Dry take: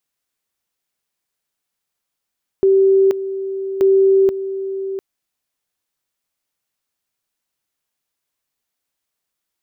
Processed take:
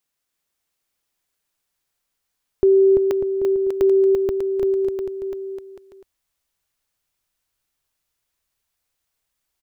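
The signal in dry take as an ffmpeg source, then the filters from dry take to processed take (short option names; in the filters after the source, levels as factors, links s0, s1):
-f lavfi -i "aevalsrc='pow(10,(-9-12*gte(mod(t,1.18),0.48))/20)*sin(2*PI*387*t)':d=2.36:s=44100"
-filter_complex "[0:a]asubboost=boost=3.5:cutoff=100,asplit=2[s0][s1];[s1]aecho=0:1:340|595|786.2|929.7|1037:0.631|0.398|0.251|0.158|0.1[s2];[s0][s2]amix=inputs=2:normalize=0"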